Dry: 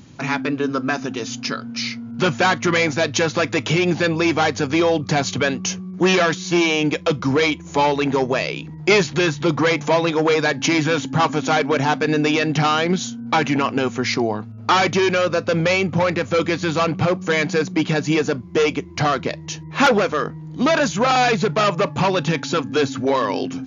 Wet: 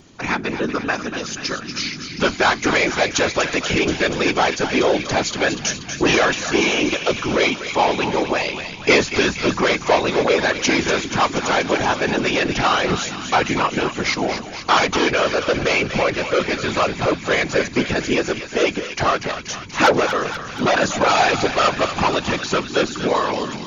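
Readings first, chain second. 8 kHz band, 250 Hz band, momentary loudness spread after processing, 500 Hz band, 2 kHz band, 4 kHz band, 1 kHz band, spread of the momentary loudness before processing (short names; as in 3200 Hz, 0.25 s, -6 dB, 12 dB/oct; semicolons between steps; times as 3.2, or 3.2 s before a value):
n/a, -2.0 dB, 7 LU, 0.0 dB, +2.0 dB, +2.0 dB, +1.0 dB, 7 LU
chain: HPF 270 Hz 6 dB/oct; thinning echo 0.24 s, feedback 74%, high-pass 970 Hz, level -8 dB; whisperiser; gain +1 dB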